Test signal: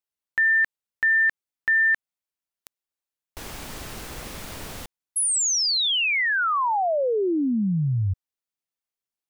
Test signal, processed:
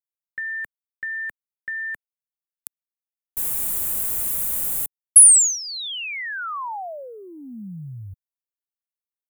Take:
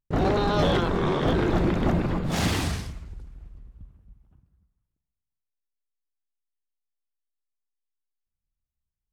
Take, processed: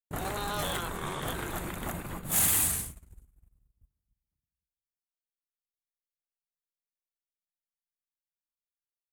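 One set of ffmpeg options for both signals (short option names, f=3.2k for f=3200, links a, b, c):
-filter_complex "[0:a]acrossover=split=160|810[a][b][c];[a]acompressor=threshold=-34dB:ratio=5[d];[b]acompressor=threshold=-38dB:ratio=4[e];[c]acompressor=threshold=-24dB:ratio=5[f];[d][e][f]amix=inputs=3:normalize=0,aexciter=amount=12.5:drive=6.6:freq=7.7k,agate=range=-26dB:threshold=-33dB:ratio=3:release=40:detection=peak,volume=-4.5dB"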